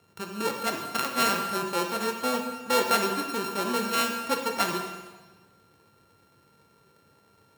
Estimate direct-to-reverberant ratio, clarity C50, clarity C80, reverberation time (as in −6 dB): 2.5 dB, 5.0 dB, 7.0 dB, 1.3 s